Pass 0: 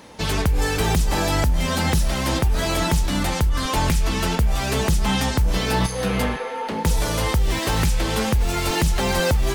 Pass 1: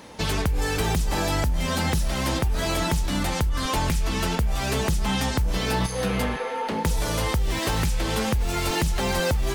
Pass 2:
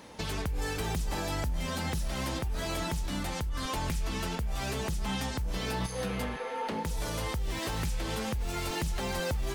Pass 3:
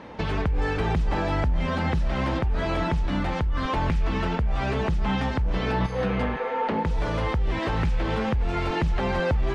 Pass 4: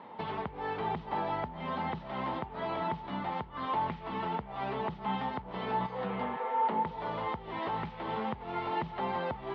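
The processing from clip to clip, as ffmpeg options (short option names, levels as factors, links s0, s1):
-af "acompressor=threshold=0.0708:ratio=2"
-af "alimiter=limit=0.119:level=0:latency=1:release=365,volume=0.531"
-af "lowpass=2300,volume=2.66"
-af "highpass=220,equalizer=f=300:t=q:w=4:g=-8,equalizer=f=530:t=q:w=4:g=-5,equalizer=f=910:t=q:w=4:g=6,equalizer=f=1600:t=q:w=4:g=-7,equalizer=f=2500:t=q:w=4:g=-7,lowpass=f=3500:w=0.5412,lowpass=f=3500:w=1.3066,volume=0.531"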